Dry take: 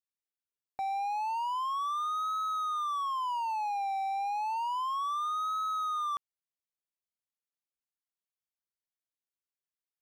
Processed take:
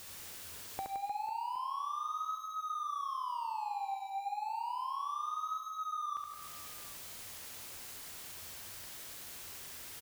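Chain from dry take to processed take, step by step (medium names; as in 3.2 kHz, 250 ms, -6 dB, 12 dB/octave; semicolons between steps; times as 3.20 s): jump at every zero crossing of -46 dBFS; peaking EQ 88 Hz +12.5 dB 0.27 oct; compression 5:1, threshold -48 dBFS, peak gain reduction 15.5 dB; on a send: reverse bouncing-ball echo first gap 70 ms, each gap 1.4×, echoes 5; on the sum: trim +7 dB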